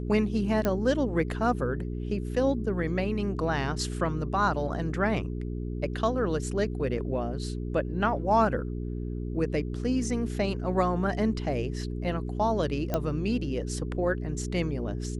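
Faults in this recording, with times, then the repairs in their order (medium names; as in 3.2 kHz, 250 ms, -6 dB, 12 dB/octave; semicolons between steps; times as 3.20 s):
hum 60 Hz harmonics 7 -33 dBFS
0.65 s: pop -13 dBFS
12.94 s: pop -14 dBFS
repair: de-click; de-hum 60 Hz, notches 7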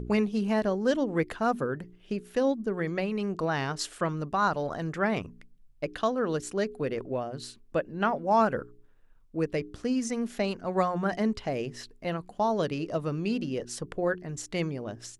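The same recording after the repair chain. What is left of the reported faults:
nothing left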